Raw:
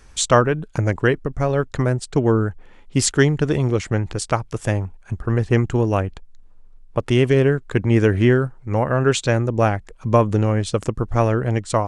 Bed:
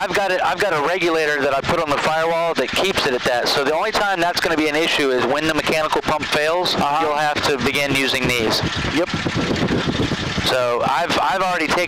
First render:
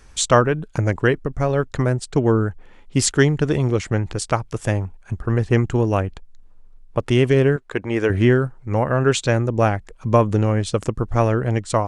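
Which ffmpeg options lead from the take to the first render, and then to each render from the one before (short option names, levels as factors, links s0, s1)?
-filter_complex "[0:a]asettb=1/sr,asplit=3[s0][s1][s2];[s0]atrim=end=7.564[s3];[s1]atrim=start=7.56:end=8.1,asetpts=PTS-STARTPTS,afade=t=in:d=0.004:c=qsin,afade=t=out:st=0.536:d=0.004:c=qsin,bass=f=250:g=-13,treble=f=4000:g=-4[s4];[s2]atrim=start=8.096[s5];[s3][s4]acrossfade=d=0.004:c1=hsin:c2=qsin[s6];[s6][s5]acrossfade=d=0.004:c1=qsin:c2=hsin"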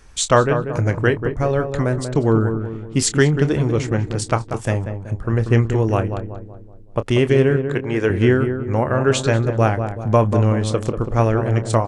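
-filter_complex "[0:a]asplit=2[s0][s1];[s1]adelay=27,volume=0.237[s2];[s0][s2]amix=inputs=2:normalize=0,asplit=2[s3][s4];[s4]adelay=189,lowpass=f=1200:p=1,volume=0.447,asplit=2[s5][s6];[s6]adelay=189,lowpass=f=1200:p=1,volume=0.48,asplit=2[s7][s8];[s8]adelay=189,lowpass=f=1200:p=1,volume=0.48,asplit=2[s9][s10];[s10]adelay=189,lowpass=f=1200:p=1,volume=0.48,asplit=2[s11][s12];[s12]adelay=189,lowpass=f=1200:p=1,volume=0.48,asplit=2[s13][s14];[s14]adelay=189,lowpass=f=1200:p=1,volume=0.48[s15];[s3][s5][s7][s9][s11][s13][s15]amix=inputs=7:normalize=0"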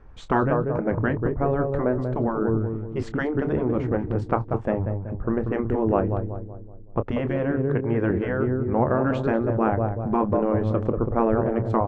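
-af "afftfilt=real='re*lt(hypot(re,im),0.891)':imag='im*lt(hypot(re,im),0.891)':win_size=1024:overlap=0.75,lowpass=1100"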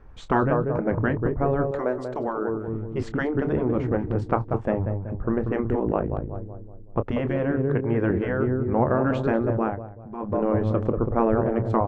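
-filter_complex "[0:a]asettb=1/sr,asplit=3[s0][s1][s2];[s0]atrim=end=1.714[s3];[s1]atrim=start=1.71:end=2.68,asetpts=PTS-STARTPTS,afade=t=in:d=0.004:c=qsin,afade=t=out:st=0.966:d=0.004:c=qsin,bass=f=250:g=-14,treble=f=4000:g=12[s4];[s2]atrim=start=2.676[s5];[s3][s4]acrossfade=d=0.004:c1=hsin:c2=qsin[s6];[s6][s5]acrossfade=d=0.004:c1=qsin:c2=hsin,asplit=3[s7][s8][s9];[s7]afade=t=out:st=5.79:d=0.02[s10];[s8]aeval=exprs='val(0)*sin(2*PI*28*n/s)':c=same,afade=t=in:st=5.79:d=0.02,afade=t=out:st=6.32:d=0.02[s11];[s9]afade=t=in:st=6.32:d=0.02[s12];[s10][s11][s12]amix=inputs=3:normalize=0,asplit=3[s13][s14][s15];[s13]atrim=end=9.83,asetpts=PTS-STARTPTS,afade=t=out:st=9.53:d=0.3:silence=0.199526[s16];[s14]atrim=start=9.83:end=10.16,asetpts=PTS-STARTPTS,volume=0.2[s17];[s15]atrim=start=10.16,asetpts=PTS-STARTPTS,afade=t=in:d=0.3:silence=0.199526[s18];[s16][s17][s18]concat=n=3:v=0:a=1"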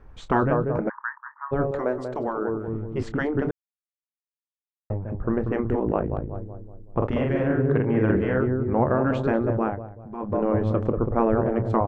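-filter_complex "[0:a]asplit=3[s0][s1][s2];[s0]afade=t=out:st=0.88:d=0.02[s3];[s1]asuperpass=centerf=1300:order=12:qfactor=1.4,afade=t=in:st=0.88:d=0.02,afade=t=out:st=1.51:d=0.02[s4];[s2]afade=t=in:st=1.51:d=0.02[s5];[s3][s4][s5]amix=inputs=3:normalize=0,asplit=3[s6][s7][s8];[s6]afade=t=out:st=6.99:d=0.02[s9];[s7]asplit=2[s10][s11];[s11]adelay=47,volume=0.75[s12];[s10][s12]amix=inputs=2:normalize=0,afade=t=in:st=6.99:d=0.02,afade=t=out:st=8.4:d=0.02[s13];[s8]afade=t=in:st=8.4:d=0.02[s14];[s9][s13][s14]amix=inputs=3:normalize=0,asplit=3[s15][s16][s17];[s15]atrim=end=3.51,asetpts=PTS-STARTPTS,afade=t=out:st=3.506:d=0.004:c=hsin[s18];[s16]atrim=start=3.51:end=4.9,asetpts=PTS-STARTPTS,volume=0[s19];[s17]atrim=start=4.9,asetpts=PTS-STARTPTS,afade=t=in:d=0.004:c=hsin[s20];[s18][s19][s20]concat=n=3:v=0:a=1"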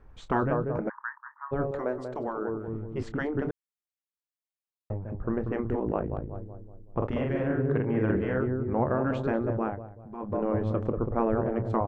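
-af "volume=0.562"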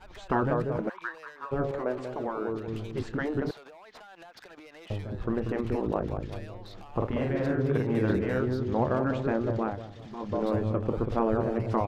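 -filter_complex "[1:a]volume=0.0266[s0];[0:a][s0]amix=inputs=2:normalize=0"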